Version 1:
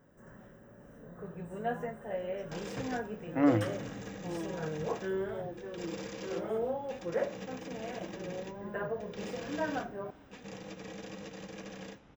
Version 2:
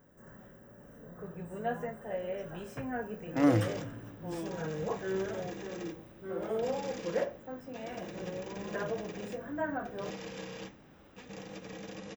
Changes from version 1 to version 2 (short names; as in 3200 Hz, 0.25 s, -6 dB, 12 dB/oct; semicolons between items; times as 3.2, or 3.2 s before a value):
speech: remove BPF 120–2800 Hz; first sound: add high shelf 11000 Hz +7 dB; second sound: entry +0.85 s